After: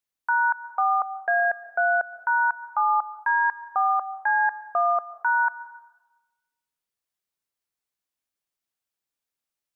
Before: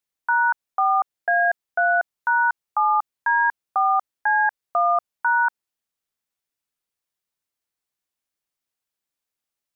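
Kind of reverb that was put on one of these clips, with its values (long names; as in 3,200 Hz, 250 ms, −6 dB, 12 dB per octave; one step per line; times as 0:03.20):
dense smooth reverb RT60 1.1 s, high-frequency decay 0.75×, pre-delay 110 ms, DRR 15.5 dB
level −2.5 dB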